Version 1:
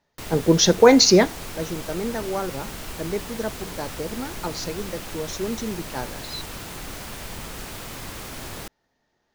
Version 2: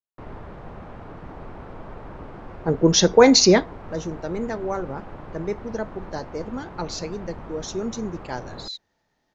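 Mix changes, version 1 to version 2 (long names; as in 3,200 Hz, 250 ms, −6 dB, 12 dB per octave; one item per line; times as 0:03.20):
speech: entry +2.35 s
background: add Chebyshev low-pass filter 1,000 Hz, order 2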